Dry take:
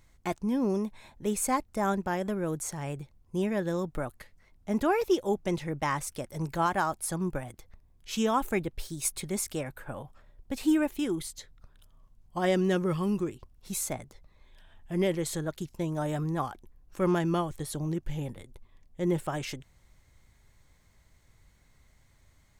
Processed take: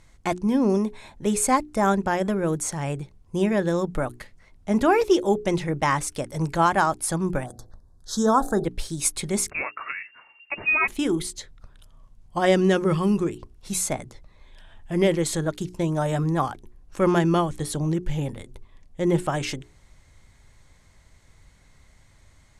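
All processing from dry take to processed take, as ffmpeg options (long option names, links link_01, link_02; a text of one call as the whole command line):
ffmpeg -i in.wav -filter_complex "[0:a]asettb=1/sr,asplit=3[link_01][link_02][link_03];[link_01]atrim=end=7.464[link_04];[link_02]atrim=start=7.46:end=8.65,asetpts=PTS-STARTPTS,afade=type=in:duration=0.004:curve=qsin,afade=type=out:start_time=1.186:duration=0.004:curve=qsin,asuperstop=centerf=2500:order=8:qfactor=1.2,bandreject=frequency=56.35:width_type=h:width=4,bandreject=frequency=112.7:width_type=h:width=4,bandreject=frequency=169.05:width_type=h:width=4,bandreject=frequency=225.4:width_type=h:width=4,bandreject=frequency=281.75:width_type=h:width=4,bandreject=frequency=338.1:width_type=h:width=4,bandreject=frequency=394.45:width_type=h:width=4,bandreject=frequency=450.8:width_type=h:width=4,bandreject=frequency=507.15:width_type=h:width=4,bandreject=frequency=563.5:width_type=h:width=4,bandreject=frequency=619.85:width_type=h:width=4,bandreject=frequency=676.2:width_type=h:width=4,bandreject=frequency=732.55:width_type=h:width=4,bandreject=frequency=788.9:width_type=h:width=4[link_05];[link_03]atrim=start=8.646[link_06];[link_04][link_05]acrossfade=duration=0.004:curve1=hsin:curve2=qsin[link_07];[link_07][link_06]acrossfade=duration=0.004:curve1=qsin:curve2=hsin,asettb=1/sr,asplit=3[link_08][link_09][link_10];[link_08]atrim=end=9.504[link_11];[link_09]atrim=start=9.5:end=10.88,asetpts=PTS-STARTPTS,afade=type=in:duration=0.004:curve=qsin,afade=type=out:start_time=1.376:duration=0.004:curve=qsin,tiltshelf=frequency=740:gain=-9,lowpass=frequency=2400:width_type=q:width=0.5098,lowpass=frequency=2400:width_type=q:width=0.6013,lowpass=frequency=2400:width_type=q:width=0.9,lowpass=frequency=2400:width_type=q:width=2.563,afreqshift=-2800[link_12];[link_10]atrim=start=10.876[link_13];[link_11][link_12]acrossfade=duration=0.004:curve1=hsin:curve2=qsin[link_14];[link_14][link_13]acrossfade=duration=0.004:curve1=qsin:curve2=hsin,lowpass=frequency=11000:width=0.5412,lowpass=frequency=11000:width=1.3066,bandreject=frequency=60:width_type=h:width=6,bandreject=frequency=120:width_type=h:width=6,bandreject=frequency=180:width_type=h:width=6,bandreject=frequency=240:width_type=h:width=6,bandreject=frequency=300:width_type=h:width=6,bandreject=frequency=360:width_type=h:width=6,bandreject=frequency=420:width_type=h:width=6,volume=7.5dB" out.wav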